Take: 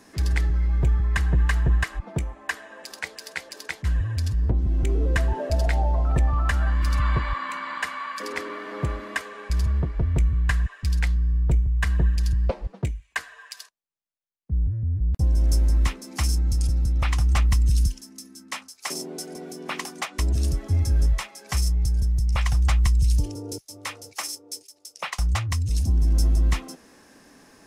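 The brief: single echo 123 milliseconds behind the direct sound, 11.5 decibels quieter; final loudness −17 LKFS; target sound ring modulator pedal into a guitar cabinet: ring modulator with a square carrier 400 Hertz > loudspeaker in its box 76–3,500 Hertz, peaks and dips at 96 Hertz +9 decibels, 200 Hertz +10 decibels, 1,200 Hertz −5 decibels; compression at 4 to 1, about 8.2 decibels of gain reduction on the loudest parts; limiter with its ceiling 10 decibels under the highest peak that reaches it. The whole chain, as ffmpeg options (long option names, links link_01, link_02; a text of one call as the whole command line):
ffmpeg -i in.wav -af "acompressor=threshold=-26dB:ratio=4,alimiter=limit=-23.5dB:level=0:latency=1,aecho=1:1:123:0.266,aeval=exprs='val(0)*sgn(sin(2*PI*400*n/s))':channel_layout=same,highpass=76,equalizer=frequency=96:width_type=q:width=4:gain=9,equalizer=frequency=200:width_type=q:width=4:gain=10,equalizer=frequency=1200:width_type=q:width=4:gain=-5,lowpass=frequency=3500:width=0.5412,lowpass=frequency=3500:width=1.3066,volume=12.5dB" out.wav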